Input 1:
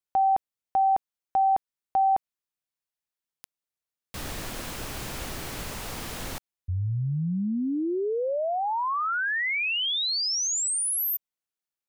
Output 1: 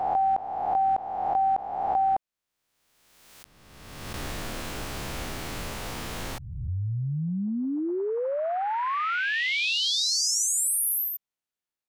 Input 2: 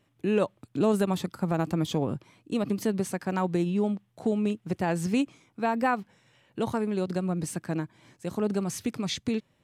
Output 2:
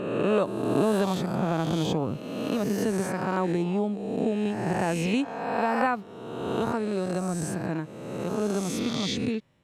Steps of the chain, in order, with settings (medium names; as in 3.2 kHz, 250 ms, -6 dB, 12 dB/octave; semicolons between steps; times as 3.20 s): reverse spectral sustain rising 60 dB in 1.56 s; treble shelf 6.8 kHz -6 dB; trim -1.5 dB